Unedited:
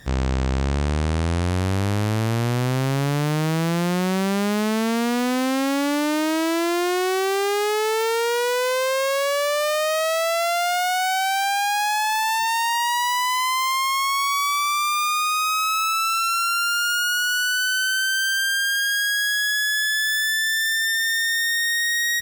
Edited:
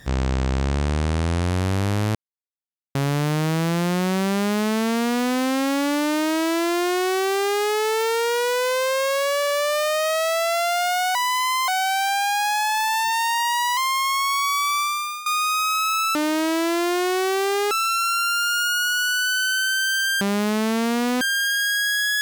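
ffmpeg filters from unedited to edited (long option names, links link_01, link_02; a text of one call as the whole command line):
ffmpeg -i in.wav -filter_complex "[0:a]asplit=14[link_01][link_02][link_03][link_04][link_05][link_06][link_07][link_08][link_09][link_10][link_11][link_12][link_13][link_14];[link_01]atrim=end=2.15,asetpts=PTS-STARTPTS,afade=type=out:start_time=2.146:duration=0.004:curve=hsin[link_15];[link_02]atrim=start=2.15:end=2.95,asetpts=PTS-STARTPTS,volume=0[link_16];[link_03]atrim=start=2.95:end=9.432,asetpts=PTS-STARTPTS,afade=type=in:duration=0.004:curve=hsin[link_17];[link_04]atrim=start=9.388:end=9.432[link_18];[link_05]atrim=start=9.388:end=9.432[link_19];[link_06]atrim=start=9.388:end=11.032[link_20];[link_07]atrim=start=13.118:end=13.652[link_21];[link_08]atrim=start=11.028:end=13.122[link_22];[link_09]atrim=start=13.648:end=15.14,asetpts=PTS-STARTPTS,afade=type=out:start_time=1.022:duration=0.47:silence=0.158489[link_23];[link_10]atrim=start=15.14:end=16.032,asetpts=PTS-STARTPTS,afade=type=in:duration=0.004:curve=hsin:silence=0.158489[link_24];[link_11]atrim=start=6.058:end=7.622[link_25];[link_12]atrim=start=16.028:end=18.532[link_26];[link_13]atrim=start=4.318:end=5.322[link_27];[link_14]atrim=start=18.528[link_28];[link_15][link_16][link_17]concat=n=3:v=0:a=1[link_29];[link_29][link_18]acrossfade=duration=0.004:curve1=hsin:curve2=hsin[link_30];[link_30][link_19]acrossfade=duration=0.004:curve1=hsin:curve2=hsin[link_31];[link_31][link_20]acrossfade=duration=0.004:curve1=hsin:curve2=hsin[link_32];[link_32][link_21]acrossfade=duration=0.004:curve1=hsin:curve2=hsin[link_33];[link_33][link_22]acrossfade=duration=0.004:curve1=hsin:curve2=hsin[link_34];[link_23][link_24]concat=n=2:v=0:a=1[link_35];[link_34][link_35]acrossfade=duration=0.004:curve1=hsin:curve2=hsin[link_36];[link_36][link_25]acrossfade=duration=0.004:curve1=hsin:curve2=hsin[link_37];[link_37][link_26]acrossfade=duration=0.004:curve1=hsin:curve2=hsin[link_38];[link_38][link_27]acrossfade=duration=0.004:curve1=hsin:curve2=hsin[link_39];[link_39][link_28]acrossfade=duration=0.004:curve1=hsin:curve2=hsin" out.wav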